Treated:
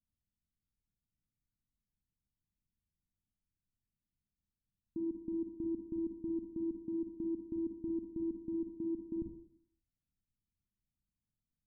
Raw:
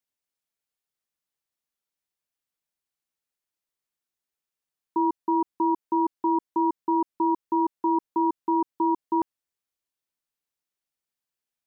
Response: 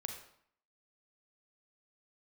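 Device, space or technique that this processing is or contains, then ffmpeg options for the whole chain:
club heard from the street: -filter_complex "[0:a]alimiter=level_in=2dB:limit=-24dB:level=0:latency=1,volume=-2dB,lowpass=frequency=230:width=0.5412,lowpass=frequency=230:width=1.3066[link_01];[1:a]atrim=start_sample=2205[link_02];[link_01][link_02]afir=irnorm=-1:irlink=0,lowshelf=frequency=78:gain=11,volume=12.5dB"

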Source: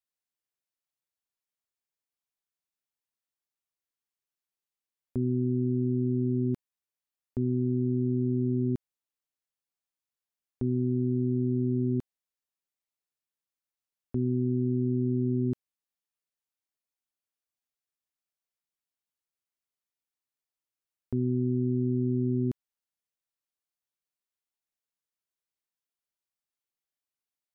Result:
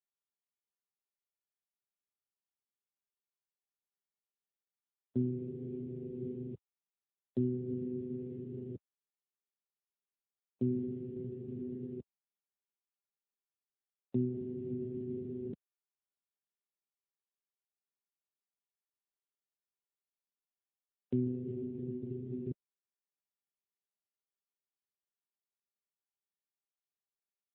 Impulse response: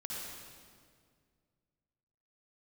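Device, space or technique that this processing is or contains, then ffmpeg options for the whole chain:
mobile call with aggressive noise cancelling: -af "highpass=130,afftdn=noise_reduction=20:noise_floor=-42" -ar 8000 -c:a libopencore_amrnb -b:a 7950

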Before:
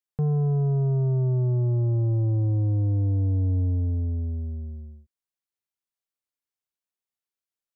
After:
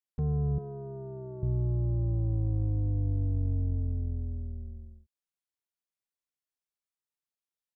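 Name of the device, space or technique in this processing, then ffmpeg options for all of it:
octave pedal: -filter_complex "[0:a]asplit=2[link_01][link_02];[link_02]asetrate=22050,aresample=44100,atempo=2,volume=-4dB[link_03];[link_01][link_03]amix=inputs=2:normalize=0,asettb=1/sr,asplit=3[link_04][link_05][link_06];[link_04]atrim=end=0.584[link_07];[link_05]atrim=start=0.58:end=1.43,asetpts=PTS-STARTPTS,afade=type=in:duration=0.004:curve=qsin,afade=type=out:start_time=0.846:duration=0.004:curve=qsin,highpass=290[link_08];[link_06]atrim=start=1.426[link_09];[link_07][link_08]acrossfade=duration=0.004:curve1=hsin:curve2=qsin[link_10];[link_10][link_09]acrossfade=duration=0.004:curve1=qsin:curve2=hsin,volume=-7dB"

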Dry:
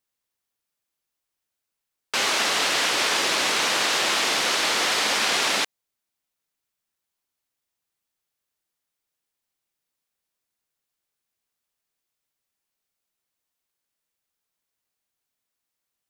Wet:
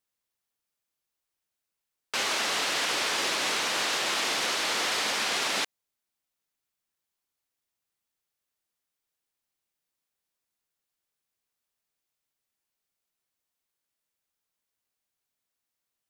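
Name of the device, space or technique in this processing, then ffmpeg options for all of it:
soft clipper into limiter: -af "asoftclip=type=tanh:threshold=-12dB,alimiter=limit=-17.5dB:level=0:latency=1,volume=-2.5dB"

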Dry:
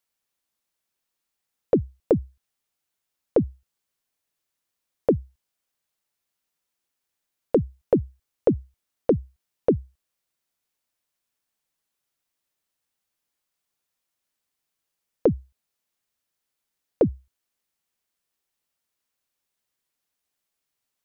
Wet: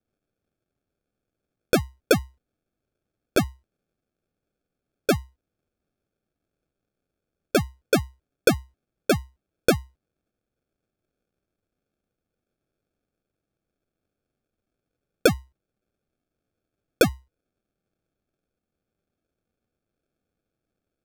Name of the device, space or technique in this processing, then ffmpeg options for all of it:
crushed at another speed: -af "asetrate=55125,aresample=44100,acrusher=samples=36:mix=1:aa=0.000001,asetrate=35280,aresample=44100"

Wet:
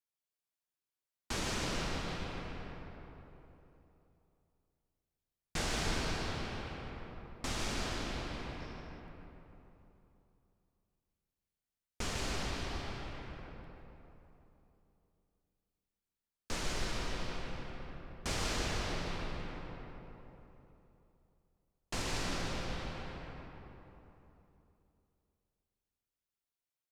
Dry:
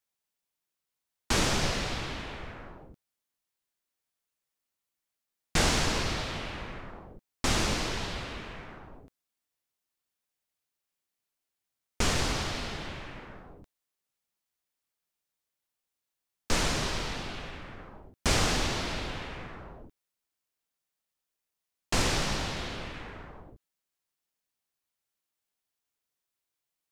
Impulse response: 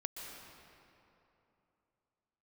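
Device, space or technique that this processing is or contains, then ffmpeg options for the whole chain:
cave: -filter_complex "[0:a]aecho=1:1:151:0.376[link_01];[1:a]atrim=start_sample=2205[link_02];[link_01][link_02]afir=irnorm=-1:irlink=0,asettb=1/sr,asplit=3[link_03][link_04][link_05];[link_03]atrim=end=8.604[link_06];[link_04]atrim=start=8.6:end=9,asetpts=PTS-STARTPTS,afade=type=in:duration=0.004:curve=qsin,afade=type=out:start_time=0.396:duration=0.004:curve=qsin,equalizer=frequency=5400:width=5.8:gain=11.5[link_07];[link_05]atrim=start=8.996[link_08];[link_06][link_07]acrossfade=duration=0.004:curve1=hsin:curve2=qsin[link_09];[link_09][link_08]acrossfade=duration=0.004:curve1=qsin:curve2=hsin,asplit=2[link_10][link_11];[link_11]adelay=308,lowpass=frequency=950:poles=1,volume=-7dB,asplit=2[link_12][link_13];[link_13]adelay=308,lowpass=frequency=950:poles=1,volume=0.44,asplit=2[link_14][link_15];[link_15]adelay=308,lowpass=frequency=950:poles=1,volume=0.44,asplit=2[link_16][link_17];[link_17]adelay=308,lowpass=frequency=950:poles=1,volume=0.44,asplit=2[link_18][link_19];[link_19]adelay=308,lowpass=frequency=950:poles=1,volume=0.44[link_20];[link_10][link_12][link_14][link_16][link_18][link_20]amix=inputs=6:normalize=0,volume=-8dB"

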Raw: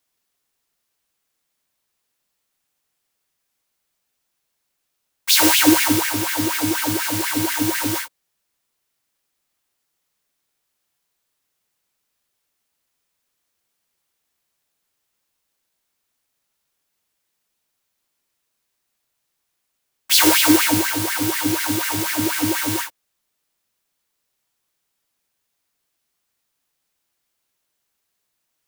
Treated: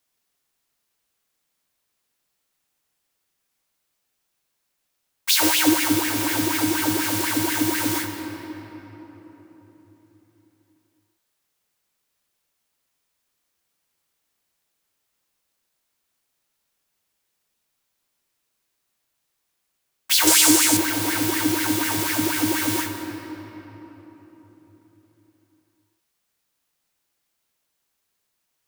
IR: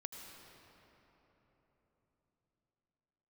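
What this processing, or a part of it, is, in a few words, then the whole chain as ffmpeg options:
ducked reverb: -filter_complex "[0:a]asplit=3[link_01][link_02][link_03];[1:a]atrim=start_sample=2205[link_04];[link_02][link_04]afir=irnorm=-1:irlink=0[link_05];[link_03]apad=whole_len=1264569[link_06];[link_05][link_06]sidechaincompress=threshold=-18dB:ratio=8:attack=31:release=773,volume=7dB[link_07];[link_01][link_07]amix=inputs=2:normalize=0,asettb=1/sr,asplit=3[link_08][link_09][link_10];[link_08]atrim=end=20.274[link_11];[link_09]atrim=start=20.27:end=20.77,asetpts=PTS-STARTPTS,afade=type=in:duration=0.004:curve=qsin,afade=type=out:start_time=0.496:duration=0.004:curve=qsin,equalizer=frequency=7600:width_type=o:width=1.4:gain=11[link_12];[link_10]atrim=start=20.766[link_13];[link_11][link_12]acrossfade=duration=0.004:curve1=hsin:curve2=qsin[link_14];[link_14][link_13]acrossfade=duration=0.004:curve1=qsin:curve2=hsin,volume=-8dB"

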